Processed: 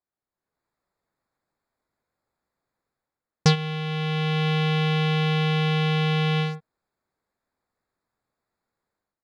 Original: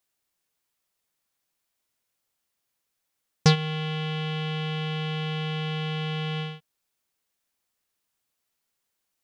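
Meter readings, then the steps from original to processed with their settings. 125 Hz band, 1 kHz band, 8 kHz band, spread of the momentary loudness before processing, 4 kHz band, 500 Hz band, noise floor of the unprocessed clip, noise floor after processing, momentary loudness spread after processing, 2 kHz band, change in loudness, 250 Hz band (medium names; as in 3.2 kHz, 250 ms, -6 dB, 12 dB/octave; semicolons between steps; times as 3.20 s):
+5.0 dB, +5.0 dB, no reading, 8 LU, +3.0 dB, +5.0 dB, -80 dBFS, under -85 dBFS, 5 LU, +5.5 dB, +4.5 dB, +5.0 dB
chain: local Wiener filter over 15 samples; level rider gain up to 12.5 dB; trim -5 dB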